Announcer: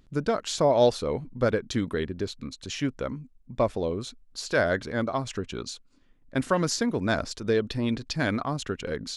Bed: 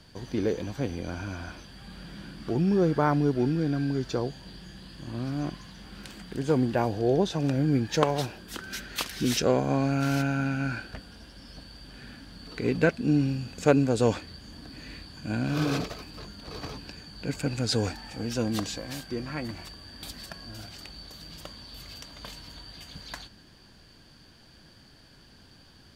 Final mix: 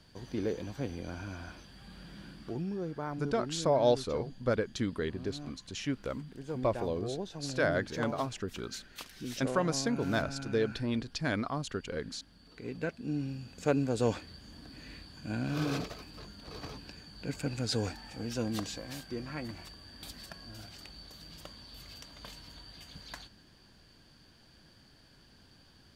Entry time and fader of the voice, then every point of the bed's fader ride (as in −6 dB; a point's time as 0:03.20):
3.05 s, −5.5 dB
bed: 0:02.32 −6 dB
0:02.78 −14 dB
0:12.65 −14 dB
0:14.07 −5.5 dB